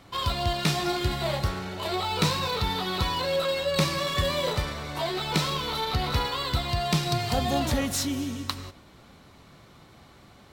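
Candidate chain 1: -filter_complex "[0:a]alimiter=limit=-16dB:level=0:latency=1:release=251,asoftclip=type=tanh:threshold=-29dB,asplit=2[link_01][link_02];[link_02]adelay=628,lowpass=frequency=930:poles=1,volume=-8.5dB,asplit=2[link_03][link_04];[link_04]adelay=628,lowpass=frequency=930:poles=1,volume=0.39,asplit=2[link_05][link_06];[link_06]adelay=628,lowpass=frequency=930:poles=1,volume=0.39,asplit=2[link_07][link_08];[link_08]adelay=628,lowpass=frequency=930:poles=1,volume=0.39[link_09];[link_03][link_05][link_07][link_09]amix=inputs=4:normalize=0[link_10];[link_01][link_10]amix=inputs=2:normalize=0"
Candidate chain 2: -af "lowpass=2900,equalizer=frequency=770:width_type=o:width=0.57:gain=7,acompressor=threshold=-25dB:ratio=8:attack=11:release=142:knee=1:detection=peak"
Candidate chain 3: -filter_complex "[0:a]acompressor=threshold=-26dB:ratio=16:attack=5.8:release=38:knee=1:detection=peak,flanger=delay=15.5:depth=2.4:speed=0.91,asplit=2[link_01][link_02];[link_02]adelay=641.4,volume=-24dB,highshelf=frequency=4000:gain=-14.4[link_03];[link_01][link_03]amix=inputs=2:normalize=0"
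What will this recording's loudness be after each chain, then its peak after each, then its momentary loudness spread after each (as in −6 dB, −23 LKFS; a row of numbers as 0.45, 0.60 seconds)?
−32.5, −29.0, −32.0 LKFS; −25.5, −13.0, −15.5 dBFS; 17, 4, 4 LU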